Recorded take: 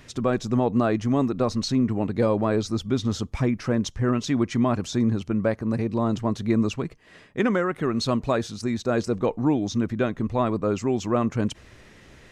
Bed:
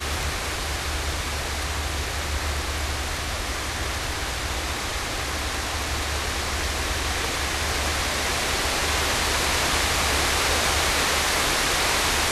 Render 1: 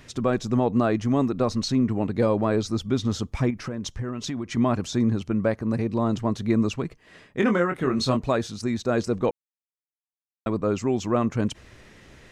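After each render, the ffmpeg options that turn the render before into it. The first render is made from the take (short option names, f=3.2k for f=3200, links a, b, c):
-filter_complex "[0:a]asettb=1/sr,asplit=3[a][b][c];[a]atrim=end=3.504[d];[b]atrim=start=3.5:end=4.57,asetpts=PTS-STARTPTS,afade=t=in:d=0.004:c=qsin,afade=t=out:st=1.066:d=0.004:c=qsin,acompressor=threshold=-26dB:ratio=6:attack=3.2:release=140:knee=1:detection=peak[e];[c]atrim=start=4.566[f];[d][e]acrossfade=d=0.004:c1=hsin:c2=qsin[g];[g][f]acrossfade=d=0.004:c1=qsin:c2=hsin,asettb=1/sr,asplit=3[h][i][j];[h]atrim=end=7.404[k];[i]atrim=start=7.4:end=8.17,asetpts=PTS-STARTPTS,afade=t=in:d=0.004:c=qsin,afade=t=out:st=0.766:d=0.004:c=qsin,asplit=2[l][m];[m]adelay=23,volume=-5.5dB[n];[l][n]amix=inputs=2:normalize=0,atrim=end_sample=33957[o];[j]atrim=start=8.166[p];[k][o]acrossfade=d=0.004:c1=hsin:c2=qsin[q];[q][p]acrossfade=d=0.004:c1=qsin:c2=hsin,asplit=3[r][s][t];[r]atrim=end=9.31,asetpts=PTS-STARTPTS,afade=t=out:st=9.306:d=0.004:c=hsin[u];[s]atrim=start=9.31:end=10.46,asetpts=PTS-STARTPTS,volume=0[v];[t]atrim=start=10.46,asetpts=PTS-STARTPTS,afade=t=in:d=0.004:c=hsin[w];[u][v][w]concat=n=3:v=0:a=1"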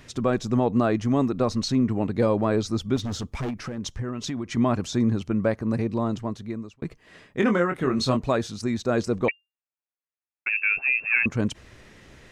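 -filter_complex "[0:a]asettb=1/sr,asplit=3[a][b][c];[a]atrim=end=2.964[d];[b]atrim=start=2.96:end=3.78,asetpts=PTS-STARTPTS,afade=t=in:d=0.004:c=qsin,afade=t=out:st=0.816:d=0.004:c=qsin,asoftclip=type=hard:threshold=-26dB[e];[c]atrim=start=3.776[f];[d][e]acrossfade=d=0.004:c1=hsin:c2=qsin[g];[g][f]acrossfade=d=0.004:c1=qsin:c2=hsin,asettb=1/sr,asplit=3[h][i][j];[h]atrim=end=9.284[k];[i]atrim=start=9.28:end=11.26,asetpts=PTS-STARTPTS,afade=t=in:d=0.004:c=qsin,afade=t=out:st=1.976:d=0.004:c=qsin,lowpass=f=2.4k:t=q:w=0.5098,lowpass=f=2.4k:t=q:w=0.6013,lowpass=f=2.4k:t=q:w=0.9,lowpass=f=2.4k:t=q:w=2.563,afreqshift=-2800[l];[j]atrim=start=11.256[m];[k][l]acrossfade=d=0.004:c1=hsin:c2=qsin[n];[n][m]acrossfade=d=0.004:c1=qsin:c2=hsin,asplit=2[o][p];[o]atrim=end=6.82,asetpts=PTS-STARTPTS,afade=t=out:st=5.84:d=0.98[q];[p]atrim=start=6.82,asetpts=PTS-STARTPTS,afade=t=in:d=0.004:c=hsin[r];[q][r]concat=n=2:v=0:a=1"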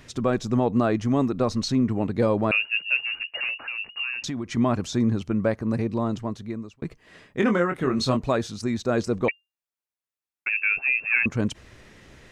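-filter_complex "[0:a]asettb=1/sr,asplit=3[a][b][c];[a]atrim=end=2.514[d];[b]atrim=start=2.51:end=4.24,asetpts=PTS-STARTPTS,afade=t=in:d=0.004:c=qsin,afade=t=out:st=1.726:d=0.004:c=qsin,lowpass=f=2.5k:t=q:w=0.5098,lowpass=f=2.5k:t=q:w=0.6013,lowpass=f=2.5k:t=q:w=0.9,lowpass=f=2.5k:t=q:w=2.563,afreqshift=-2900[e];[c]atrim=start=4.236[f];[d][e]acrossfade=d=0.004:c1=hsin:c2=qsin[g];[g][f]acrossfade=d=0.004:c1=qsin:c2=hsin"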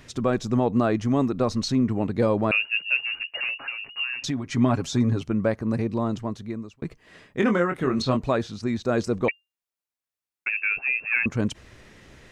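-filter_complex "[0:a]asettb=1/sr,asplit=3[a][b][c];[a]atrim=end=3.604[d];[b]atrim=start=3.6:end=5.26,asetpts=PTS-STARTPTS,afade=t=in:d=0.004:c=qsin,afade=t=out:st=1.656:d=0.004:c=qsin,aecho=1:1:7.3:0.61,atrim=end_sample=73206[e];[c]atrim=start=5.256[f];[d][e]acrossfade=d=0.004:c1=hsin:c2=qsin[g];[g][f]acrossfade=d=0.004:c1=qsin:c2=hsin,asettb=1/sr,asplit=3[h][i][j];[h]atrim=end=8.024[k];[i]atrim=start=8.02:end=8.82,asetpts=PTS-STARTPTS,afade=t=in:d=0.004:c=qsin,afade=t=out:st=0.796:d=0.004:c=qsin,acrossover=split=4800[l][m];[m]acompressor=threshold=-53dB:ratio=4:attack=1:release=60[n];[l][n]amix=inputs=2:normalize=0[o];[j]atrim=start=8.816[p];[k][o]acrossfade=d=0.004:c1=hsin:c2=qsin[q];[q][p]acrossfade=d=0.004:c1=qsin:c2=hsin,asettb=1/sr,asplit=3[r][s][t];[r]atrim=end=10.504[u];[s]atrim=start=10.5:end=11.27,asetpts=PTS-STARTPTS,afade=t=in:d=0.004:c=qsin,afade=t=out:st=0.766:d=0.004:c=qsin,lowpass=2.8k[v];[t]atrim=start=11.266[w];[u][v]acrossfade=d=0.004:c1=hsin:c2=qsin[x];[x][w]acrossfade=d=0.004:c1=qsin:c2=hsin"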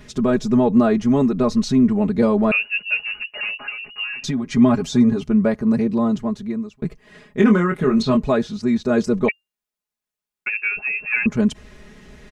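-af "lowshelf=f=390:g=6,aecho=1:1:4.8:0.84"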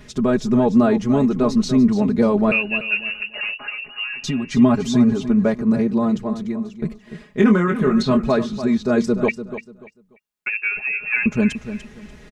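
-af "aecho=1:1:293|586|879:0.266|0.0665|0.0166"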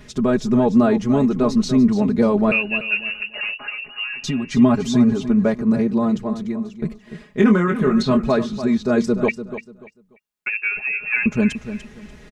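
-af anull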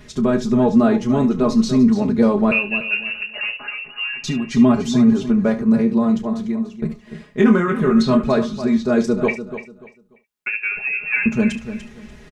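-filter_complex "[0:a]asplit=2[a][b];[b]adelay=13,volume=-13dB[c];[a][c]amix=inputs=2:normalize=0,aecho=1:1:31|71:0.237|0.188"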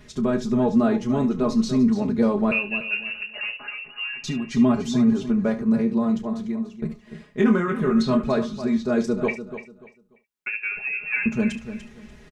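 -af "volume=-5dB"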